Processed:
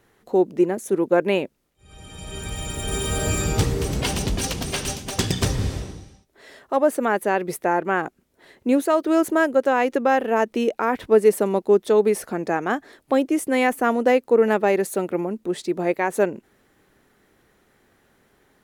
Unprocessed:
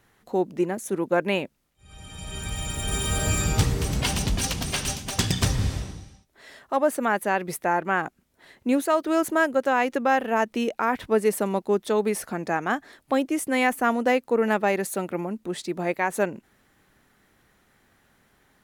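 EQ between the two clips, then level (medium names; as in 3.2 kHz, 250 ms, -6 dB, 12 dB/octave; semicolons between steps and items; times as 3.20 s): peaking EQ 410 Hz +7 dB 1.1 oct; 0.0 dB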